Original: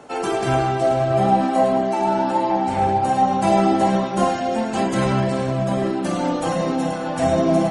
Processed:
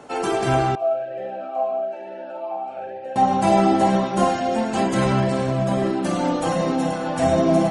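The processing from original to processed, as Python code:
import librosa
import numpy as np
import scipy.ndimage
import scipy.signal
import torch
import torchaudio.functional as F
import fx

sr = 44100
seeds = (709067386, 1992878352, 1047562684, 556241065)

y = fx.vowel_sweep(x, sr, vowels='a-e', hz=1.1, at=(0.75, 3.16))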